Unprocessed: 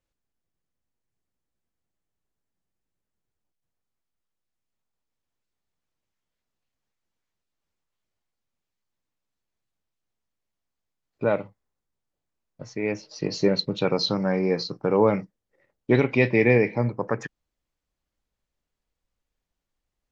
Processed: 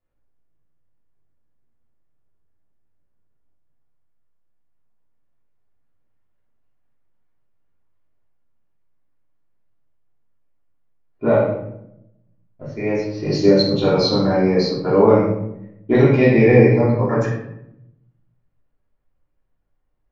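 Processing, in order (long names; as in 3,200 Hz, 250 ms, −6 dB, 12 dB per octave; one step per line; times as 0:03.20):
dynamic equaliser 2,500 Hz, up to −6 dB, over −38 dBFS, Q 1.3
rectangular room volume 230 cubic metres, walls mixed, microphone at 3.1 metres
low-pass that shuts in the quiet parts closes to 1,800 Hz, open at −8 dBFS
level −3 dB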